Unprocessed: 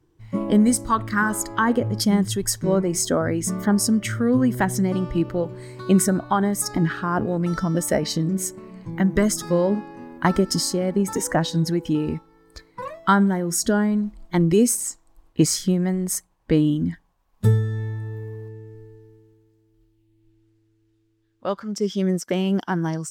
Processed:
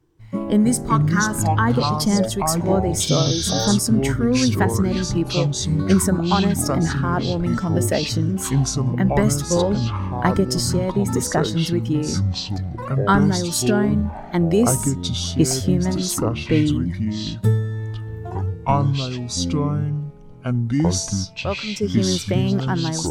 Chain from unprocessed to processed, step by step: ever faster or slower copies 176 ms, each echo -6 st, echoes 2; spectral replace 3.09–3.67 s, 1.4–6.4 kHz both

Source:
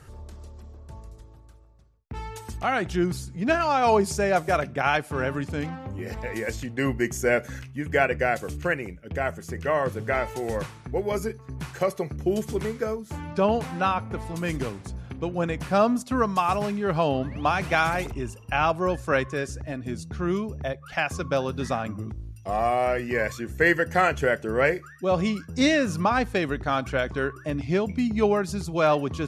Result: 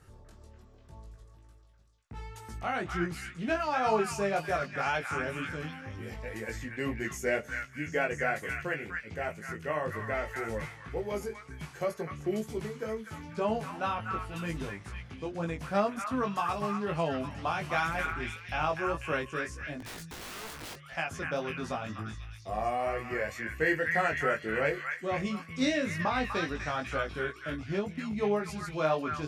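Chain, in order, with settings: repeats whose band climbs or falls 247 ms, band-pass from 1.6 kHz, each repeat 0.7 oct, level -1 dB; 19.80–20.79 s: integer overflow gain 29.5 dB; chorus 2 Hz, delay 18 ms, depth 2.1 ms; trim -5 dB

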